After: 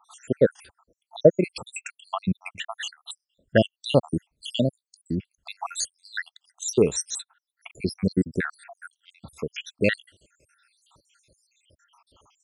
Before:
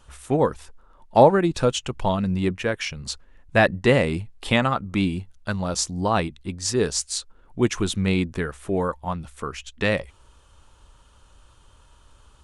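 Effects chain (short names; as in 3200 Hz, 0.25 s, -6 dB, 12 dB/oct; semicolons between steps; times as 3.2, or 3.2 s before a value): random spectral dropouts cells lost 81%; HPF 120 Hz 12 dB/oct; gain +4 dB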